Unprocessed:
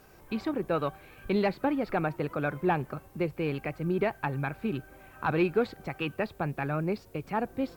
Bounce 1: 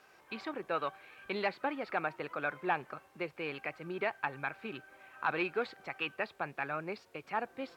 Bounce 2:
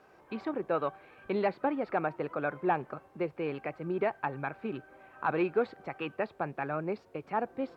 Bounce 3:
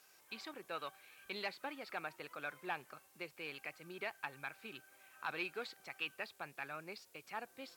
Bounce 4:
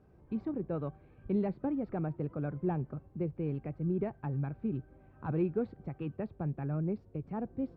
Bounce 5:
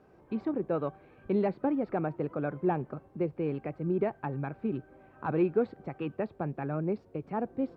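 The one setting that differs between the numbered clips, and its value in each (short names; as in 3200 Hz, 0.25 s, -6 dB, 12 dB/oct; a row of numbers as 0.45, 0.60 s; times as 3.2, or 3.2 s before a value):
band-pass, frequency: 2100, 830, 7000, 110, 310 Hz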